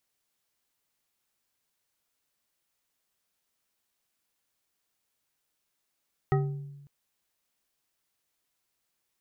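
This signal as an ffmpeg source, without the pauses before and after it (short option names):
-f lavfi -i "aevalsrc='0.0891*pow(10,-3*t/1.13)*sin(2*PI*142*t)+0.0596*pow(10,-3*t/0.556)*sin(2*PI*391.5*t)+0.0398*pow(10,-3*t/0.347)*sin(2*PI*767.4*t)+0.0266*pow(10,-3*t/0.244)*sin(2*PI*1268.5*t)+0.0178*pow(10,-3*t/0.184)*sin(2*PI*1894.3*t)':d=0.55:s=44100"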